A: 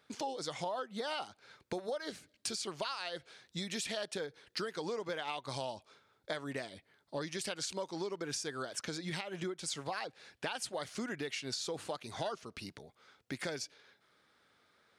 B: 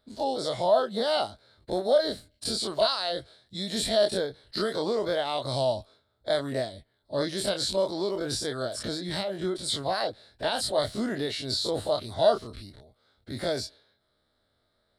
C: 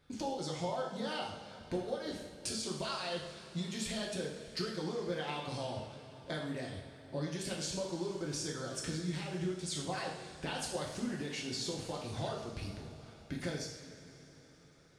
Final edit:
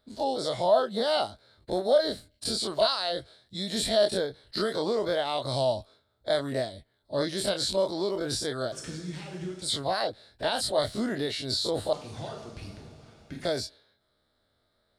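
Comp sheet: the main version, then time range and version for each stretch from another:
B
8.72–9.62 s: from C
11.93–13.45 s: from C
not used: A

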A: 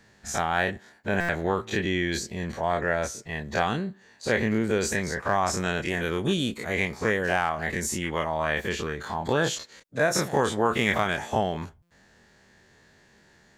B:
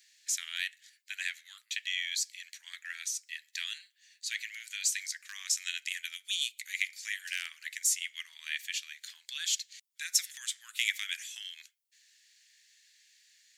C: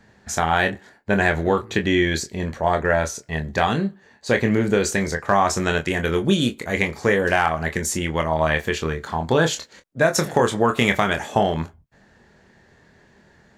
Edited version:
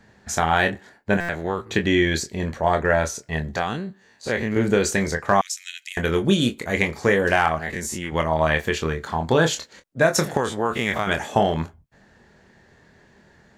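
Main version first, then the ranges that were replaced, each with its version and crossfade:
C
1.17–1.66 s: from A
3.56–4.56 s: from A
5.41–5.97 s: from B
7.59–8.12 s: from A
10.37–11.07 s: from A

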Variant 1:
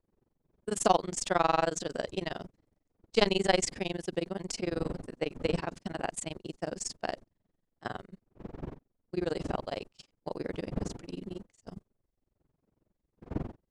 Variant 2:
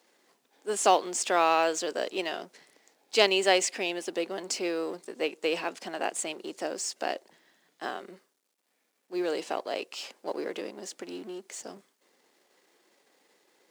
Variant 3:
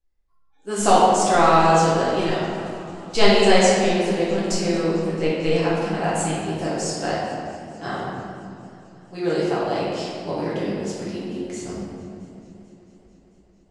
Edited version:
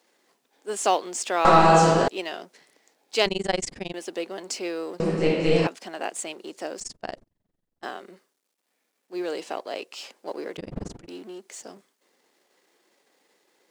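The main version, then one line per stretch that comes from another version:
2
1.45–2.08 s: from 3
3.26–3.94 s: from 1
5.00–5.67 s: from 3
6.80–7.83 s: from 1
10.57–11.08 s: from 1

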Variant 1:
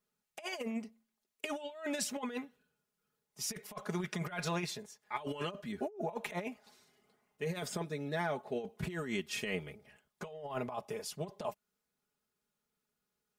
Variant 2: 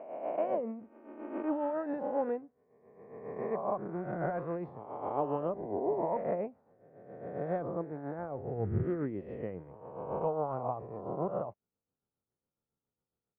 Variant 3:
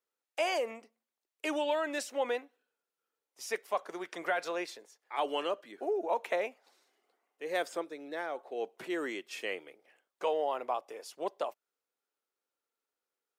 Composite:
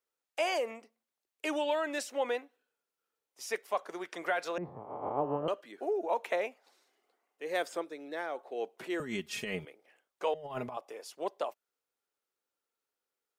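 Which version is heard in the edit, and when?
3
4.58–5.48 s: from 2
9.00–9.65 s: from 1
10.34–10.77 s: from 1

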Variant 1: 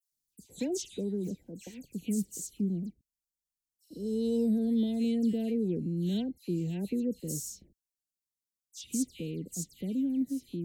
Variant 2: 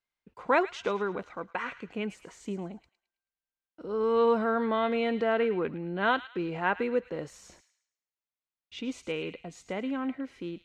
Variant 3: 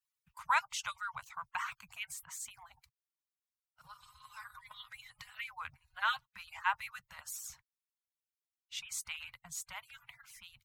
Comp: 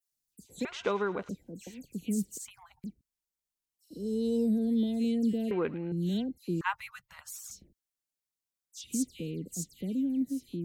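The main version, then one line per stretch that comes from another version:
1
0.65–1.29 s: from 2
2.38–2.84 s: from 3
5.51–5.92 s: from 2
6.61–7.51 s: from 3

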